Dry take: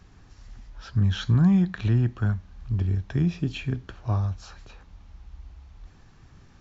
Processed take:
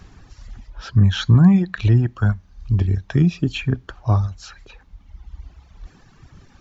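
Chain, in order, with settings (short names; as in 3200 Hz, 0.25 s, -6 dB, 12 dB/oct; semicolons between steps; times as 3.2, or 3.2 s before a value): reverb removal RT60 1.6 s; gain +8.5 dB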